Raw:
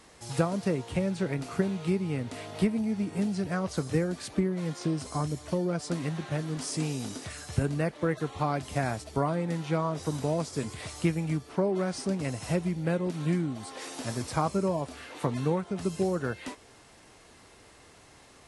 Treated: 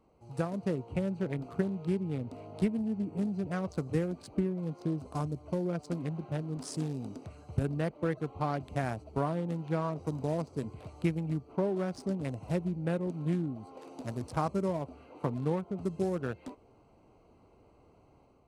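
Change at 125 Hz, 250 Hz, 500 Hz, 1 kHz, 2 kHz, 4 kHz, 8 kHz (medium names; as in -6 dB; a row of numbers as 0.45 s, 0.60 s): -3.0 dB, -3.0 dB, -3.5 dB, -4.5 dB, -7.0 dB, -11.0 dB, -12.5 dB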